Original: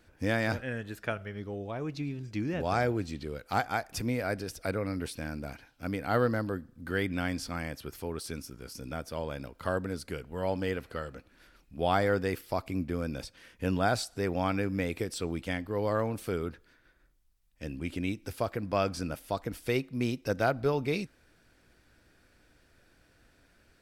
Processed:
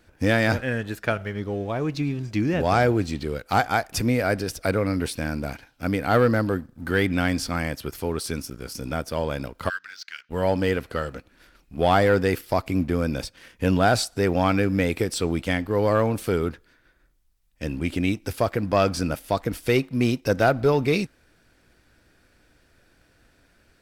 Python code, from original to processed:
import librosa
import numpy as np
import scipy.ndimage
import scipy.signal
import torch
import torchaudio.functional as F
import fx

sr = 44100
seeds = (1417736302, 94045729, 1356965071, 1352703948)

y = fx.ellip_bandpass(x, sr, low_hz=1500.0, high_hz=6000.0, order=3, stop_db=40, at=(9.68, 10.29), fade=0.02)
y = fx.leveller(y, sr, passes=1)
y = y * 10.0 ** (5.5 / 20.0)